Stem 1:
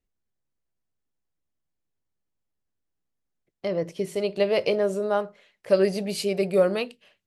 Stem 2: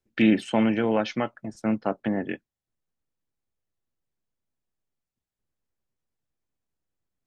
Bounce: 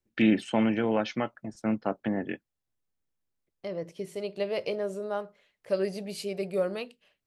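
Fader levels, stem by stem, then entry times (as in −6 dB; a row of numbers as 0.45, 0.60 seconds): −8.0, −3.0 decibels; 0.00, 0.00 seconds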